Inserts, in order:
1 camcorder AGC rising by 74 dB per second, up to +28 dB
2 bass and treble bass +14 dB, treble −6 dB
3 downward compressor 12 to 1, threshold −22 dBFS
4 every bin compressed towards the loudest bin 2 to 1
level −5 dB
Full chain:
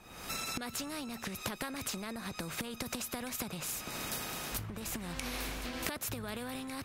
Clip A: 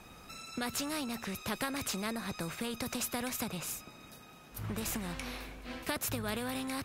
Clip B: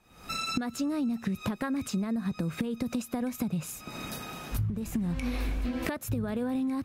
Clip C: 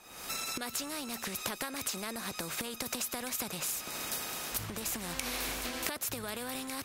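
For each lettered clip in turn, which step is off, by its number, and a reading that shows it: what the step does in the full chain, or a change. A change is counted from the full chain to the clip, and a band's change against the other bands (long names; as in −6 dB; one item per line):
1, change in crest factor −5.5 dB
4, 250 Hz band +10.5 dB
2, 125 Hz band −5.0 dB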